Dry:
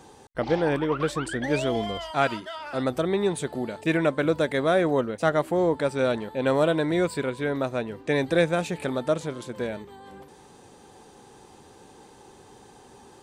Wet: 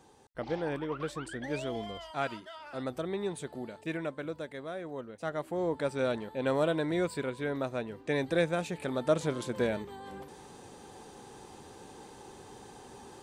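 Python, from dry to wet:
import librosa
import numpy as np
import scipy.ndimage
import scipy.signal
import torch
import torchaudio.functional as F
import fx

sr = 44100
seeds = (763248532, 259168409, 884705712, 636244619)

y = fx.gain(x, sr, db=fx.line((3.64, -10.0), (4.8, -18.5), (5.85, -6.5), (8.85, -6.5), (9.3, 0.5)))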